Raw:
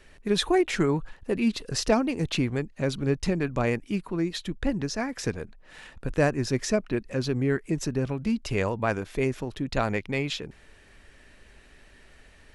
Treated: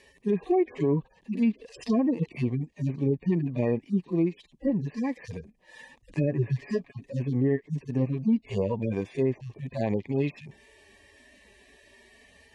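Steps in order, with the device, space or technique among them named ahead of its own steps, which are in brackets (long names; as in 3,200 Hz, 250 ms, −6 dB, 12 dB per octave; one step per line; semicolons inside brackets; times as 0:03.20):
harmonic-percussive split with one part muted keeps harmonic
0:06.14–0:07.14: comb filter 7.2 ms, depth 59%
treble cut that deepens with the level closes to 2,000 Hz, closed at −21 dBFS
PA system with an anti-feedback notch (high-pass filter 110 Hz 12 dB per octave; Butterworth band-reject 1,400 Hz, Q 2.5; brickwall limiter −20.5 dBFS, peak gain reduction 9 dB)
level +4 dB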